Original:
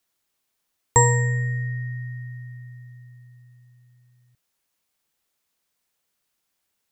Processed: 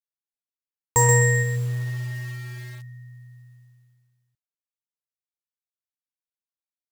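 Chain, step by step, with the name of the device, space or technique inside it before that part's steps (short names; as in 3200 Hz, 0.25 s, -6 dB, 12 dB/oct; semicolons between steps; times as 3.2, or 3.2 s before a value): saturation between pre-emphasis and de-emphasis (high shelf 2500 Hz +7.5 dB; soft clip -11 dBFS, distortion -11 dB; high shelf 2500 Hz -7.5 dB); expander -50 dBFS; 1.42–1.97 LPF 1100 Hz -> 1900 Hz 24 dB/oct; lo-fi delay 0.128 s, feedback 35%, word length 7-bit, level -5 dB; gain +2.5 dB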